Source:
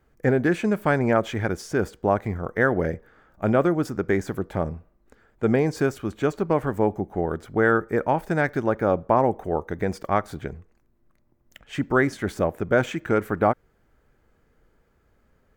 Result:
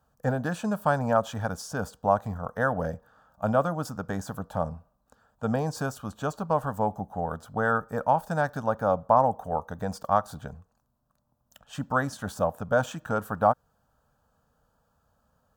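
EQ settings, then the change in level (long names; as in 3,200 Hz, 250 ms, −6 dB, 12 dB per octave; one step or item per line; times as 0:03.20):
high-pass filter 150 Hz 6 dB per octave
phaser with its sweep stopped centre 880 Hz, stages 4
+1.5 dB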